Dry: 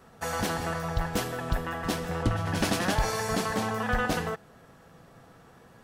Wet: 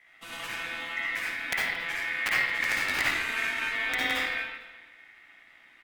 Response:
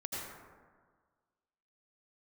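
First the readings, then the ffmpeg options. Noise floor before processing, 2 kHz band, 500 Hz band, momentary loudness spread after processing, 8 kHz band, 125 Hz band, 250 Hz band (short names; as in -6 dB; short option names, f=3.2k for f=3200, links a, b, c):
-55 dBFS, +7.5 dB, -12.0 dB, 11 LU, -5.0 dB, -21.0 dB, -13.5 dB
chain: -filter_complex "[0:a]acrossover=split=360|760|1900[a][b][c][d];[a]dynaudnorm=f=200:g=11:m=7.5dB[e];[e][b][c][d]amix=inputs=4:normalize=0,aeval=exprs='val(0)+0.00501*(sin(2*PI*60*n/s)+sin(2*PI*2*60*n/s)/2+sin(2*PI*3*60*n/s)/3+sin(2*PI*4*60*n/s)/4+sin(2*PI*5*60*n/s)/5)':c=same,aeval=exprs='(mod(3.55*val(0)+1,2)-1)/3.55':c=same,aecho=1:1:225|450:0.1|0.031[f];[1:a]atrim=start_sample=2205,asetrate=66150,aresample=44100[g];[f][g]afir=irnorm=-1:irlink=0,aeval=exprs='val(0)*sin(2*PI*2000*n/s)':c=same,volume=-2dB"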